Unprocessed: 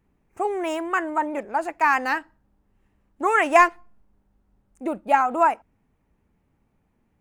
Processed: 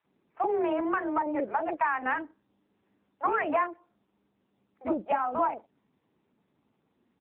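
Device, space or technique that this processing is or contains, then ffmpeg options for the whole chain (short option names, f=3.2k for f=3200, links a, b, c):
voicemail: -filter_complex "[0:a]highpass=400,lowpass=3k,aemphasis=mode=reproduction:type=riaa,acrossover=split=620[a][b];[a]adelay=40[c];[c][b]amix=inputs=2:normalize=0,acompressor=threshold=-26dB:ratio=8,volume=3dB" -ar 8000 -c:a libopencore_amrnb -b:a 6700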